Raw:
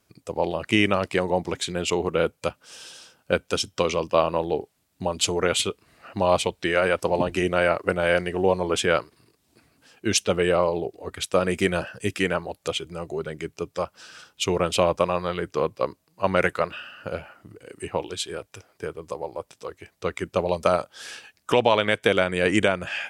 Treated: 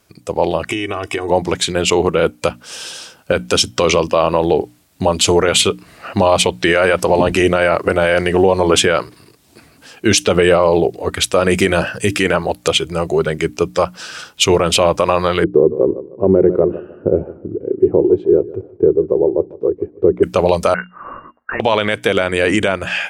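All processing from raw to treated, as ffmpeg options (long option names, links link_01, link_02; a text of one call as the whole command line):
ffmpeg -i in.wav -filter_complex "[0:a]asettb=1/sr,asplit=3[link_01][link_02][link_03];[link_01]atrim=end=0.664[link_04];[link_02]atrim=start=0.66:end=1.29,asetpts=PTS-STARTPTS,afade=type=in:duration=0.004:curve=qsin,afade=type=out:start_time=0.626:duration=0.004:curve=qsin,aecho=1:1:2.7:0.78,atrim=end_sample=27783,acompressor=threshold=-26dB:ratio=16:attack=3.2:release=140:knee=1:detection=peak,asuperstop=centerf=4300:order=4:qfactor=4.9[link_05];[link_03]atrim=start=1.286[link_06];[link_04][link_05]acrossfade=duration=0.004:curve1=hsin:curve2=qsin[link_07];[link_07][link_06]acrossfade=duration=0.004:curve1=qsin:curve2=hsin,asettb=1/sr,asplit=3[link_08][link_09][link_10];[link_08]atrim=end=15.444[link_11];[link_09]atrim=start=15.44:end=20.23,asetpts=PTS-STARTPTS,afade=type=in:duration=0.004:curve=qsin,afade=type=out:start_time=4.786:duration=0.004:curve=qsin,lowpass=frequency=380:width_type=q:width=4.7,aecho=1:1:151|302|453:0.106|0.0328|0.0102,atrim=end_sample=211239[link_12];[link_10]atrim=start=20.226[link_13];[link_11][link_12]acrossfade=duration=0.004:curve1=hsin:curve2=qsin[link_14];[link_14][link_13]acrossfade=duration=0.004:curve1=qsin:curve2=hsin,asettb=1/sr,asplit=3[link_15][link_16][link_17];[link_15]atrim=end=20.744[link_18];[link_16]atrim=start=20.74:end=21.6,asetpts=PTS-STARTPTS,afade=type=in:duration=0.004:curve=qsin,afade=type=out:start_time=0.856:duration=0.004:curve=qsin,highpass=frequency=1200:width=0.5412,highpass=frequency=1200:width=1.3066,aeval=exprs='(tanh(10*val(0)+0.25)-tanh(0.25))/10':channel_layout=same,lowpass=frequency=2400:width_type=q:width=0.5098,lowpass=frequency=2400:width_type=q:width=0.6013,lowpass=frequency=2400:width_type=q:width=0.9,lowpass=frequency=2400:width_type=q:width=2.563,afreqshift=-2800[link_19];[link_17]atrim=start=21.596[link_20];[link_18][link_19]acrossfade=duration=0.004:curve1=hsin:curve2=qsin[link_21];[link_21][link_20]acrossfade=duration=0.004:curve1=qsin:curve2=hsin,bandreject=frequency=60:width_type=h:width=6,bandreject=frequency=120:width_type=h:width=6,bandreject=frequency=180:width_type=h:width=6,bandreject=frequency=240:width_type=h:width=6,bandreject=frequency=300:width_type=h:width=6,dynaudnorm=framelen=370:gausssize=13:maxgain=11.5dB,alimiter=level_in=11dB:limit=-1dB:release=50:level=0:latency=1,volume=-1dB" out.wav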